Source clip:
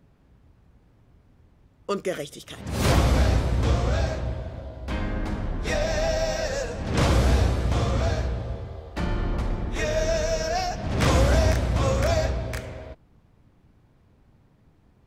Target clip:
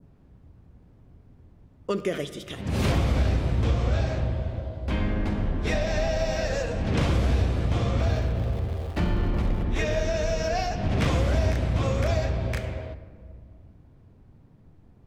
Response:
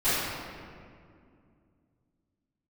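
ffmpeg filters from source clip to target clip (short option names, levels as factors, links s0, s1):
-filter_complex "[0:a]asettb=1/sr,asplit=3[s0][s1][s2];[s0]atrim=end=7.984[s3];[s1]atrim=start=7.98:end=9.64,asetpts=PTS-STARTPTS,afade=t=in:d=0.004:c=qsin,afade=t=out:st=1.656:d=0.004:c=qsin,aeval=exprs='val(0)+0.5*0.0112*sgn(val(0))':c=same[s4];[s2]atrim=start=9.636[s5];[s3][s4]acrossfade=d=0.004:c1=hsin:c2=qsin[s6];[s6][s5]acrossfade=d=0.004:c1=qsin:c2=hsin,acompressor=threshold=0.0562:ratio=3,tiltshelf=f=690:g=4.5,asplit=2[s7][s8];[1:a]atrim=start_sample=2205[s9];[s8][s9]afir=irnorm=-1:irlink=0,volume=0.0447[s10];[s7][s10]amix=inputs=2:normalize=0,adynamicequalizer=threshold=0.00251:dfrequency=2700:dqfactor=0.97:tfrequency=2700:tqfactor=0.97:attack=5:release=100:ratio=0.375:range=3.5:mode=boostabove:tftype=bell"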